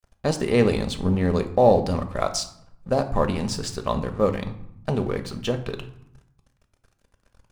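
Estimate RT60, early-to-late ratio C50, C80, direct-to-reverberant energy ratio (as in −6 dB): 0.75 s, 12.0 dB, 15.0 dB, 6.5 dB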